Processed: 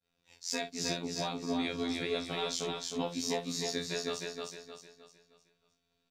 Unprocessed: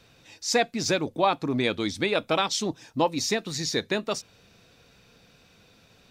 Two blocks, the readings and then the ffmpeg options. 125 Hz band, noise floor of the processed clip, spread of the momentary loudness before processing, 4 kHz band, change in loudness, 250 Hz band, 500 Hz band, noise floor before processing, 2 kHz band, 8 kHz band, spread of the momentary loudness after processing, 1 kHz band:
-9.0 dB, -80 dBFS, 5 LU, -6.5 dB, -8.5 dB, -7.0 dB, -9.5 dB, -59 dBFS, -10.0 dB, -6.5 dB, 9 LU, -12.5 dB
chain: -filter_complex "[0:a]aecho=1:1:7.4:0.76,acrossover=split=370|3000[s0][s1][s2];[s1]acompressor=threshold=0.0447:ratio=6[s3];[s0][s3][s2]amix=inputs=3:normalize=0,asplit=2[s4][s5];[s5]aecho=0:1:22|52:0.335|0.282[s6];[s4][s6]amix=inputs=2:normalize=0,agate=range=0.0224:threshold=0.00631:ratio=3:detection=peak,afftfilt=real='hypot(re,im)*cos(PI*b)':imag='0':win_size=2048:overlap=0.75,asplit=2[s7][s8];[s8]aecho=0:1:309|618|927|1236|1545:0.708|0.276|0.108|0.042|0.0164[s9];[s7][s9]amix=inputs=2:normalize=0,volume=0.422"

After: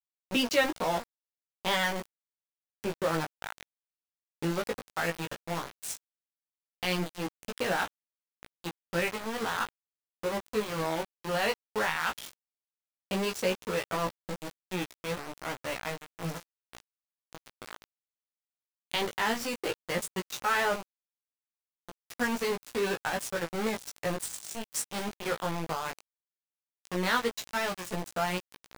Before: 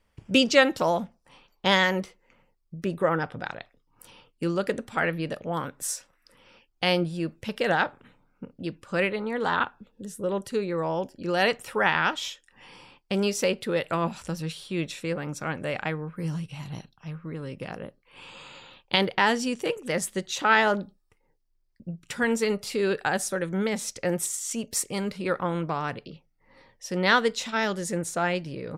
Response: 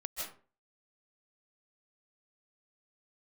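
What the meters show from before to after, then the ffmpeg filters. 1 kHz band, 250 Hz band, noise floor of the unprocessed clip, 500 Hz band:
-5.0 dB, -7.0 dB, -69 dBFS, -6.0 dB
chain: -filter_complex "[0:a]asplit=2[s0][s1];[s1]alimiter=limit=0.15:level=0:latency=1:release=131,volume=1.41[s2];[s0][s2]amix=inputs=2:normalize=0,aeval=exprs='val(0)*gte(abs(val(0)),0.112)':c=same,flanger=delay=16:depth=2.8:speed=0.14,volume=0.398"

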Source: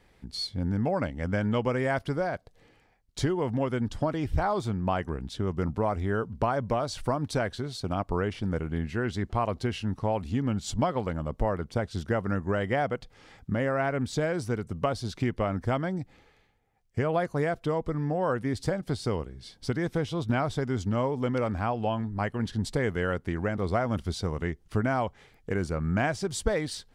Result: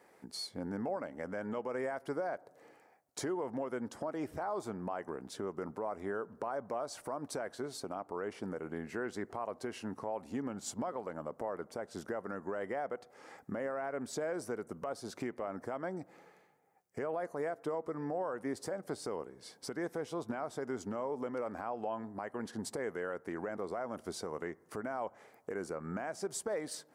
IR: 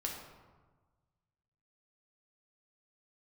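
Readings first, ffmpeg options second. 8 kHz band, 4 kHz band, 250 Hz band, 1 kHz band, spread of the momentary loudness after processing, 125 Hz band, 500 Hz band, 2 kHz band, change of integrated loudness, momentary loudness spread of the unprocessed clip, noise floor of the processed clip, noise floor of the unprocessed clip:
-3.5 dB, -10.5 dB, -11.0 dB, -9.0 dB, 5 LU, -20.5 dB, -8.0 dB, -10.5 dB, -10.0 dB, 5 LU, -65 dBFS, -62 dBFS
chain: -filter_complex "[0:a]highpass=390,equalizer=f=3400:w=1:g=-14,acompressor=threshold=0.00447:ratio=1.5,alimiter=level_in=2.66:limit=0.0631:level=0:latency=1:release=109,volume=0.376,asplit=2[s0][s1];[1:a]atrim=start_sample=2205,lowpass=2000[s2];[s1][s2]afir=irnorm=-1:irlink=0,volume=0.1[s3];[s0][s3]amix=inputs=2:normalize=0,volume=1.68"

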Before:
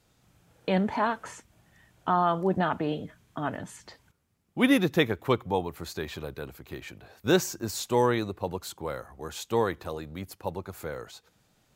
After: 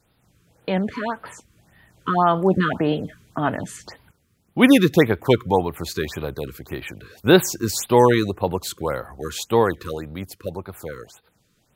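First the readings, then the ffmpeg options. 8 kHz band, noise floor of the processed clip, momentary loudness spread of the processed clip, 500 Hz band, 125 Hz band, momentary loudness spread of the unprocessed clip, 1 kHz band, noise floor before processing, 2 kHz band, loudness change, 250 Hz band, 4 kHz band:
+8.0 dB, -65 dBFS, 18 LU, +8.5 dB, +8.5 dB, 17 LU, +6.0 dB, -68 dBFS, +7.0 dB, +8.5 dB, +8.5 dB, +7.0 dB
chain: -af "dynaudnorm=f=380:g=11:m=2.51,afftfilt=real='re*(1-between(b*sr/1024,680*pow(7400/680,0.5+0.5*sin(2*PI*1.8*pts/sr))/1.41,680*pow(7400/680,0.5+0.5*sin(2*PI*1.8*pts/sr))*1.41))':imag='im*(1-between(b*sr/1024,680*pow(7400/680,0.5+0.5*sin(2*PI*1.8*pts/sr))/1.41,680*pow(7400/680,0.5+0.5*sin(2*PI*1.8*pts/sr))*1.41))':win_size=1024:overlap=0.75,volume=1.33"

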